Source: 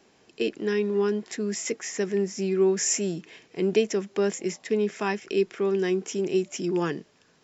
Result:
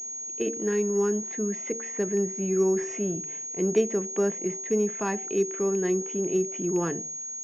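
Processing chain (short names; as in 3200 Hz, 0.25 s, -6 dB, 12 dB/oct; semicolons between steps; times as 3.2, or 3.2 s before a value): high shelf 2100 Hz -9 dB; de-hum 76.66 Hz, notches 12; on a send at -21 dB: reverb, pre-delay 4 ms; on the sum: pulse-width modulation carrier 6600 Hz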